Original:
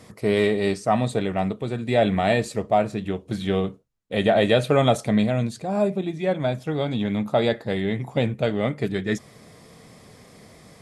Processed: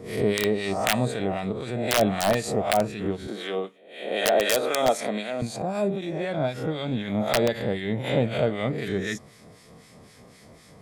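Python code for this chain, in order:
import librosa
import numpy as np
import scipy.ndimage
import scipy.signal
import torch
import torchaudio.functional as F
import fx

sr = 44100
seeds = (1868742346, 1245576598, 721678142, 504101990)

y = fx.spec_swells(x, sr, rise_s=0.68)
y = fx.bessel_highpass(y, sr, hz=360.0, order=4, at=(3.27, 5.42))
y = (np.mod(10.0 ** (8.0 / 20.0) * y + 1.0, 2.0) - 1.0) / 10.0 ** (8.0 / 20.0)
y = fx.harmonic_tremolo(y, sr, hz=3.9, depth_pct=70, crossover_hz=1300.0)
y = fx.pre_swell(y, sr, db_per_s=93.0)
y = y * librosa.db_to_amplitude(-1.0)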